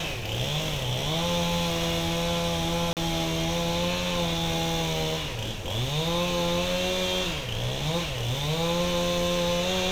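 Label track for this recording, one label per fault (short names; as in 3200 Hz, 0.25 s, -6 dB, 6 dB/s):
2.930000	2.970000	gap 38 ms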